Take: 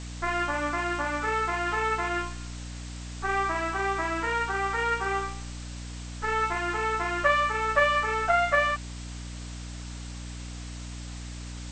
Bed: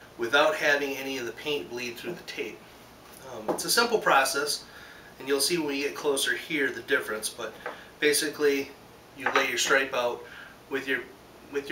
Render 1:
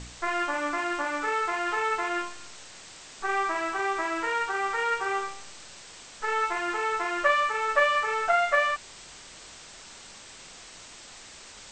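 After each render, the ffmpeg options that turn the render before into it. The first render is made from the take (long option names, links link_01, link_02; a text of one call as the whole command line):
ffmpeg -i in.wav -af "bandreject=frequency=60:width_type=h:width=4,bandreject=frequency=120:width_type=h:width=4,bandreject=frequency=180:width_type=h:width=4,bandreject=frequency=240:width_type=h:width=4,bandreject=frequency=300:width_type=h:width=4" out.wav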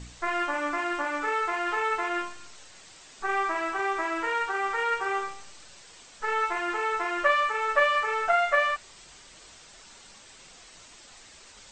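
ffmpeg -i in.wav -af "afftdn=noise_reduction=6:noise_floor=-47" out.wav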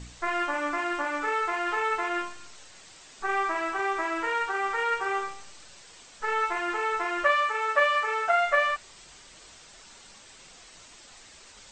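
ffmpeg -i in.wav -filter_complex "[0:a]asettb=1/sr,asplit=3[link_01][link_02][link_03];[link_01]atrim=end=7.244[link_04];[link_02]atrim=start=7.24:end=8.37,asetpts=PTS-STARTPTS,afade=type=in:duration=0.004:curve=qsin,afade=type=out:start_time=1.126:duration=0.004:curve=qsin,highpass=frequency=220:poles=1[link_05];[link_03]atrim=start=8.366[link_06];[link_04][link_05]acrossfade=duration=0.004:curve1=hsin:curve2=qsin[link_07];[link_07][link_06]acrossfade=duration=0.004:curve1=qsin:curve2=hsin" out.wav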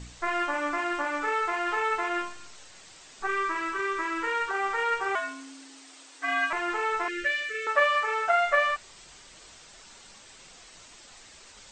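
ffmpeg -i in.wav -filter_complex "[0:a]asettb=1/sr,asplit=3[link_01][link_02][link_03];[link_01]atrim=end=3.274[link_04];[link_02]atrim=start=3.27:end=4.51,asetpts=PTS-STARTPTS,afade=type=in:duration=0.004:curve=qsin,afade=type=out:start_time=1.236:duration=0.004:curve=qsin,asuperstop=centerf=730:order=4:qfactor=2.2[link_05];[link_03]atrim=start=4.506[link_06];[link_04][link_05]acrossfade=duration=0.004:curve1=hsin:curve2=qsin[link_07];[link_07][link_06]acrossfade=duration=0.004:curve1=qsin:curve2=hsin,asettb=1/sr,asplit=3[link_08][link_09][link_10];[link_08]atrim=end=5.154[link_11];[link_09]atrim=start=5.15:end=6.53,asetpts=PTS-STARTPTS,afade=type=in:duration=0.004:curve=qsin,afade=type=out:start_time=1.376:duration=0.004:curve=qsin,afreqshift=270[link_12];[link_10]atrim=start=6.526[link_13];[link_11][link_12]acrossfade=duration=0.004:curve1=hsin:curve2=qsin[link_14];[link_14][link_13]acrossfade=duration=0.004:curve1=qsin:curve2=hsin,asettb=1/sr,asplit=3[link_15][link_16][link_17];[link_15]atrim=end=7.084[link_18];[link_16]atrim=start=7.08:end=7.67,asetpts=PTS-STARTPTS,afade=type=in:duration=0.004:curve=qsin,afade=type=out:start_time=0.586:duration=0.004:curve=qsin,asuperstop=centerf=890:order=8:qfactor=0.81[link_19];[link_17]atrim=start=7.666[link_20];[link_18][link_19]acrossfade=duration=0.004:curve1=hsin:curve2=qsin[link_21];[link_21][link_20]acrossfade=duration=0.004:curve1=qsin:curve2=hsin" out.wav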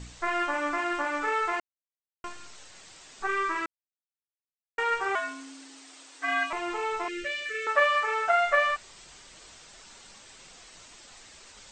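ffmpeg -i in.wav -filter_complex "[0:a]asettb=1/sr,asplit=3[link_01][link_02][link_03];[link_01]atrim=end=6.434[link_04];[link_02]atrim=start=6.43:end=7.46,asetpts=PTS-STARTPTS,afade=type=in:duration=0.004:curve=qsin,afade=type=out:start_time=1.026:duration=0.004:curve=qsin,equalizer=frequency=1600:width_type=o:width=0.47:gain=-11.5[link_05];[link_03]atrim=start=7.456[link_06];[link_04][link_05]acrossfade=duration=0.004:curve1=hsin:curve2=qsin[link_07];[link_07][link_06]acrossfade=duration=0.004:curve1=qsin:curve2=hsin,asplit=5[link_08][link_09][link_10][link_11][link_12];[link_08]atrim=end=1.6,asetpts=PTS-STARTPTS,afade=type=out:start_time=1.596:duration=0.004:curve=hsin[link_13];[link_09]atrim=start=1.6:end=2.24,asetpts=PTS-STARTPTS,volume=0[link_14];[link_10]atrim=start=2.24:end=3.66,asetpts=PTS-STARTPTS,afade=type=in:duration=0.004:curve=hsin,afade=type=out:start_time=1.416:duration=0.004:curve=hsin[link_15];[link_11]atrim=start=3.66:end=4.78,asetpts=PTS-STARTPTS,volume=0[link_16];[link_12]atrim=start=4.78,asetpts=PTS-STARTPTS,afade=type=in:duration=0.004:curve=hsin[link_17];[link_13][link_14][link_15][link_16][link_17]concat=n=5:v=0:a=1" out.wav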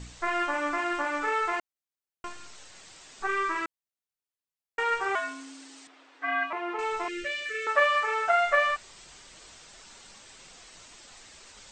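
ffmpeg -i in.wav -filter_complex "[0:a]asettb=1/sr,asplit=3[link_01][link_02][link_03];[link_01]atrim=end=5.874[link_04];[link_02]atrim=start=5.87:end=6.79,asetpts=PTS-STARTPTS,afade=type=in:duration=0.004:curve=qsin,afade=type=out:start_time=0.916:duration=0.004:curve=qsin,highpass=220,lowpass=2300[link_05];[link_03]atrim=start=6.786[link_06];[link_04][link_05]acrossfade=duration=0.004:curve1=hsin:curve2=qsin[link_07];[link_07][link_06]acrossfade=duration=0.004:curve1=qsin:curve2=hsin" out.wav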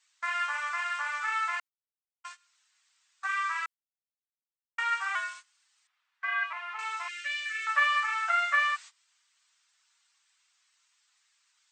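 ffmpeg -i in.wav -af "highpass=frequency=1100:width=0.5412,highpass=frequency=1100:width=1.3066,agate=range=-20dB:threshold=-44dB:ratio=16:detection=peak" out.wav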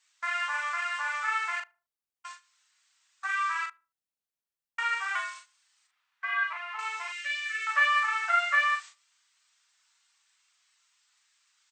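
ffmpeg -i in.wav -filter_complex "[0:a]asplit=2[link_01][link_02];[link_02]adelay=39,volume=-5.5dB[link_03];[link_01][link_03]amix=inputs=2:normalize=0,asplit=2[link_04][link_05];[link_05]adelay=75,lowpass=frequency=900:poles=1,volume=-20dB,asplit=2[link_06][link_07];[link_07]adelay=75,lowpass=frequency=900:poles=1,volume=0.4,asplit=2[link_08][link_09];[link_09]adelay=75,lowpass=frequency=900:poles=1,volume=0.4[link_10];[link_04][link_06][link_08][link_10]amix=inputs=4:normalize=0" out.wav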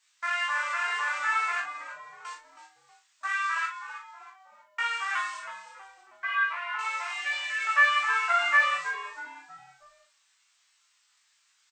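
ffmpeg -i in.wav -filter_complex "[0:a]asplit=2[link_01][link_02];[link_02]adelay=19,volume=-2.5dB[link_03];[link_01][link_03]amix=inputs=2:normalize=0,asplit=5[link_04][link_05][link_06][link_07][link_08];[link_05]adelay=320,afreqshift=-140,volume=-11.5dB[link_09];[link_06]adelay=640,afreqshift=-280,volume=-19.5dB[link_10];[link_07]adelay=960,afreqshift=-420,volume=-27.4dB[link_11];[link_08]adelay=1280,afreqshift=-560,volume=-35.4dB[link_12];[link_04][link_09][link_10][link_11][link_12]amix=inputs=5:normalize=0" out.wav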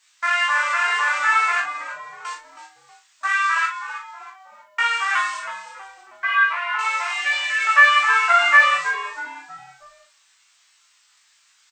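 ffmpeg -i in.wav -af "volume=9dB,alimiter=limit=-2dB:level=0:latency=1" out.wav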